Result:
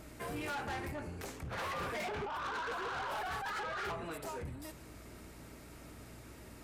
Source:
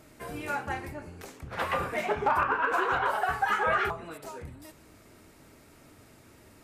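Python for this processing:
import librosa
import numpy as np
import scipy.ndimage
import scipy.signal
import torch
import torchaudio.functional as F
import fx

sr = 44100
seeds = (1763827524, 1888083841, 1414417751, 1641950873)

y = fx.over_compress(x, sr, threshold_db=-31.0, ratio=-1.0)
y = fx.add_hum(y, sr, base_hz=60, snr_db=21)
y = 10.0 ** (-35.0 / 20.0) * np.tanh(y / 10.0 ** (-35.0 / 20.0))
y = F.gain(torch.from_numpy(y), -1.0).numpy()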